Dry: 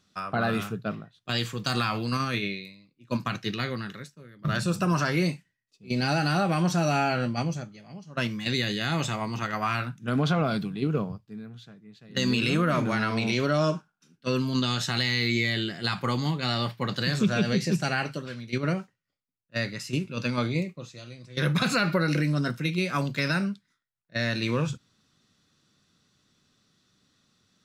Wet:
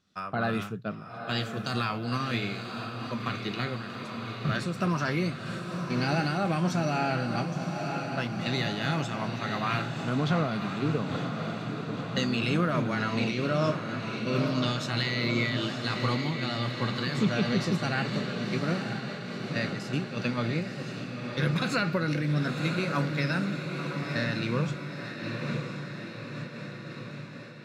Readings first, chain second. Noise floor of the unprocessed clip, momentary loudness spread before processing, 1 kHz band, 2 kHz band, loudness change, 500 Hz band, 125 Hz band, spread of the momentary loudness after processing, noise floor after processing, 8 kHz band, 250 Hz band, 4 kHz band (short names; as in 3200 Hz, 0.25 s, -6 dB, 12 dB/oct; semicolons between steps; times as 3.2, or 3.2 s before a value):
-76 dBFS, 12 LU, -1.5 dB, -2.0 dB, -2.5 dB, -1.5 dB, -1.0 dB, 9 LU, -40 dBFS, -5.5 dB, -1.5 dB, -3.5 dB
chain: high shelf 6200 Hz -8 dB; diffused feedback echo 0.987 s, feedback 66%, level -6 dB; noise-modulated level, depth 55%